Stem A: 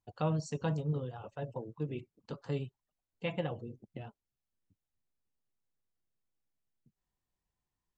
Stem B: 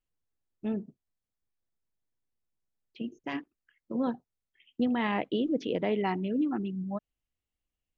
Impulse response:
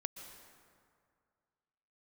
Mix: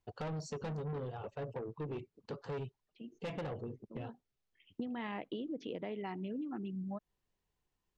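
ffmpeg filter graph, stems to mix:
-filter_complex "[0:a]lowpass=5800,equalizer=f=420:w=3.6:g=7,asoftclip=type=tanh:threshold=0.0158,volume=1.33,asplit=2[s0][s1];[1:a]volume=0.75[s2];[s1]apad=whole_len=351685[s3];[s2][s3]sidechaincompress=threshold=0.00141:ratio=10:attack=32:release=596[s4];[s0][s4]amix=inputs=2:normalize=0,acompressor=threshold=0.0141:ratio=12"

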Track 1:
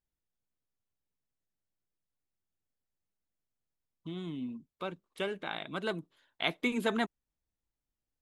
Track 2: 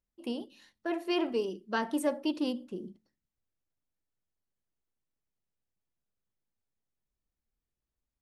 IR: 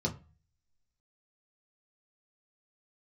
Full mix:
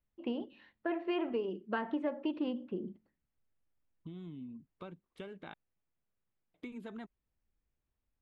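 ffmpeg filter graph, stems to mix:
-filter_complex "[0:a]lowpass=f=3400:p=1,lowshelf=f=240:g=11.5,acompressor=threshold=0.0158:ratio=6,volume=0.447,asplit=3[s0][s1][s2];[s0]atrim=end=5.54,asetpts=PTS-STARTPTS,afade=t=out:st=5.536:d=0.004:c=hsin[s3];[s1]atrim=start=5.54:end=6.54,asetpts=PTS-STARTPTS,volume=0[s4];[s2]atrim=start=6.54,asetpts=PTS-STARTPTS,afade=t=in:d=0.004:c=hsin[s5];[s3][s4][s5]concat=n=3:v=0:a=1[s6];[1:a]lowpass=f=2800:w=0.5412,lowpass=f=2800:w=1.3066,volume=1.19[s7];[s6][s7]amix=inputs=2:normalize=0,acompressor=threshold=0.0282:ratio=5"

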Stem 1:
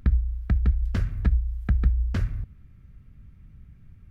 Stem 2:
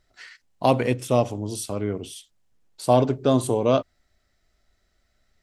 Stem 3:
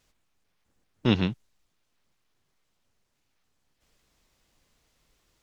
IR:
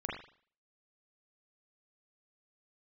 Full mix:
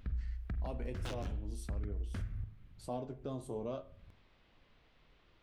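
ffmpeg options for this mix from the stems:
-filter_complex "[0:a]bandreject=f=70.14:t=h:w=4,bandreject=f=140.28:t=h:w=4,bandreject=f=210.42:t=h:w=4,alimiter=limit=0.119:level=0:latency=1:release=141,volume=0.355,asplit=2[s0][s1];[s1]volume=0.299[s2];[1:a]flanger=delay=8.5:depth=5.6:regen=45:speed=0.44:shape=sinusoidal,tiltshelf=f=970:g=3,volume=0.2,asplit=3[s3][s4][s5];[s4]volume=0.168[s6];[2:a]lowpass=f=3600:w=0.5412,lowpass=f=3600:w=1.3066,acompressor=threshold=0.0631:ratio=6,aeval=exprs='0.0299*(abs(mod(val(0)/0.0299+3,4)-2)-1)':c=same,volume=1.33,asplit=2[s7][s8];[s8]volume=0.178[s9];[s5]apad=whole_len=239307[s10];[s7][s10]sidechaincompress=threshold=0.00447:ratio=8:attack=16:release=228[s11];[3:a]atrim=start_sample=2205[s12];[s2][s6][s9]amix=inputs=3:normalize=0[s13];[s13][s12]afir=irnorm=-1:irlink=0[s14];[s0][s3][s11][s14]amix=inputs=4:normalize=0,alimiter=level_in=2:limit=0.0631:level=0:latency=1:release=423,volume=0.501"

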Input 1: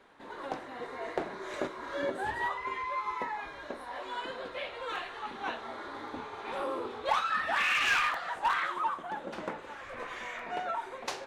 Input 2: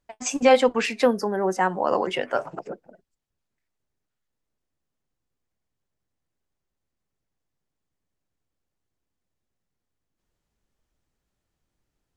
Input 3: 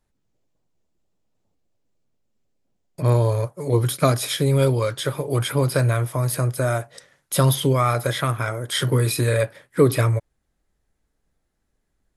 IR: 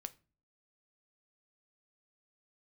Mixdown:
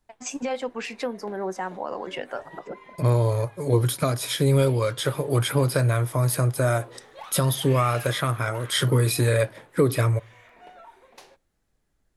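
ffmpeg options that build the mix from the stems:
-filter_complex "[0:a]equalizer=f=1300:t=o:w=0.77:g=-4.5,aexciter=amount=1.7:drive=8.5:freq=9800,adelay=100,volume=0.2,asplit=2[s0][s1];[s1]volume=0.631[s2];[1:a]dynaudnorm=f=560:g=9:m=5.62,volume=0.531[s3];[2:a]volume=0.794,asplit=2[s4][s5];[s5]volume=0.398[s6];[s0][s3]amix=inputs=2:normalize=0,alimiter=limit=0.112:level=0:latency=1:release=357,volume=1[s7];[3:a]atrim=start_sample=2205[s8];[s2][s6]amix=inputs=2:normalize=0[s9];[s9][s8]afir=irnorm=-1:irlink=0[s10];[s4][s7][s10]amix=inputs=3:normalize=0,alimiter=limit=0.316:level=0:latency=1:release=448"

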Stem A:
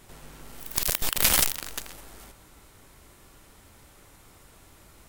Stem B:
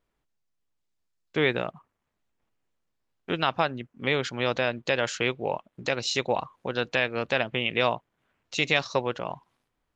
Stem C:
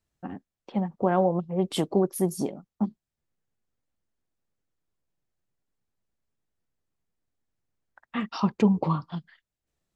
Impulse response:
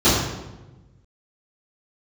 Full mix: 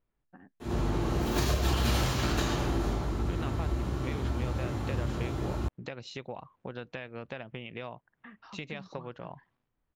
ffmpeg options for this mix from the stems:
-filter_complex "[0:a]alimiter=limit=0.316:level=0:latency=1:release=89,adelay=600,volume=0.891,asplit=2[s0][s1];[s1]volume=0.531[s2];[1:a]bass=f=250:g=6,treble=f=4000:g=-3,acompressor=threshold=0.0316:ratio=5,volume=0.501[s3];[2:a]agate=range=0.447:threshold=0.00447:ratio=16:detection=peak,equalizer=f=1700:w=3.2:g=13.5,acompressor=threshold=0.0178:ratio=2.5,adelay=100,volume=0.178[s4];[3:a]atrim=start_sample=2205[s5];[s2][s5]afir=irnorm=-1:irlink=0[s6];[s0][s3][s4][s6]amix=inputs=4:normalize=0,highshelf=f=4500:g=-11.5,acompressor=threshold=0.0631:ratio=8"

